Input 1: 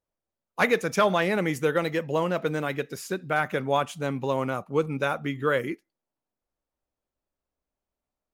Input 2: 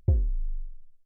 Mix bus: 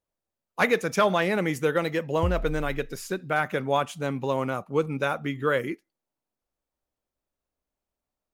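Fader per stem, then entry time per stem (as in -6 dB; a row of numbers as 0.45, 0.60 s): 0.0, -5.0 dB; 0.00, 2.15 s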